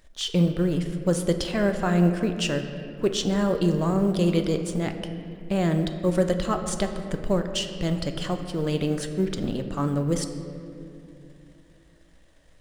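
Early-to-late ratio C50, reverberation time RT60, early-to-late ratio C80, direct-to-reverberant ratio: 8.0 dB, 2.7 s, 9.0 dB, 6.0 dB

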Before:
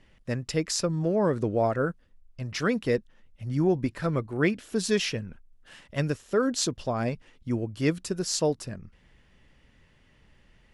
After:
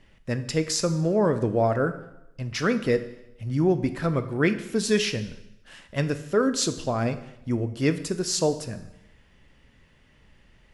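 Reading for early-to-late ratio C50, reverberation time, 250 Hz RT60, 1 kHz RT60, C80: 13.0 dB, 0.85 s, 0.80 s, 0.85 s, 15.0 dB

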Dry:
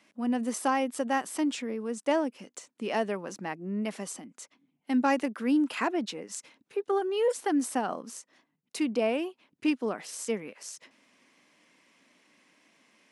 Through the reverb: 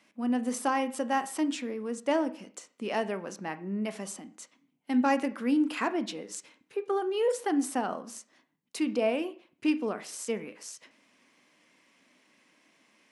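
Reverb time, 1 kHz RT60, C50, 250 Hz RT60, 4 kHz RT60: 0.45 s, 0.45 s, 16.5 dB, 0.40 s, 0.45 s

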